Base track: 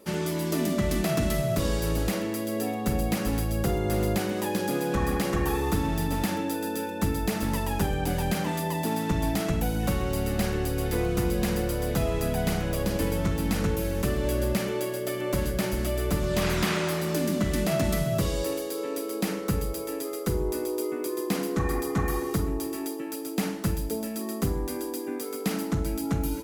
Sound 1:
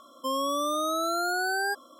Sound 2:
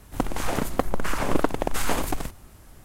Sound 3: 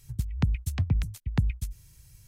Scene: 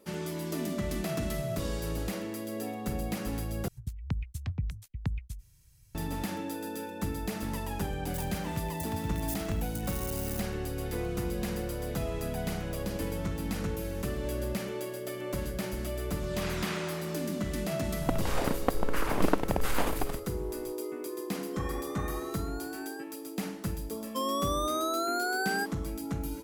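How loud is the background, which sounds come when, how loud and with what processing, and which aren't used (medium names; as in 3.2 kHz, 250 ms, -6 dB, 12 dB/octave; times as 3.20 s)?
base track -7 dB
3.68 s: replace with 3 -7.5 dB
8.14 s: add 3 -12 dB + zero-crossing glitches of -21 dBFS
17.89 s: add 2 -4 dB + peaking EQ 7.2 kHz -6 dB 1.1 oct
21.29 s: add 1 -17.5 dB
23.91 s: add 1 -3 dB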